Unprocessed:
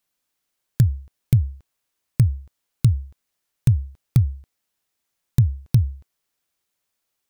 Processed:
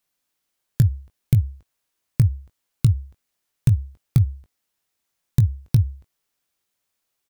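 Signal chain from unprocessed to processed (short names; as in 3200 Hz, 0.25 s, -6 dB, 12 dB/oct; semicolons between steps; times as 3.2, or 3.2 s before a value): doubler 20 ms -11 dB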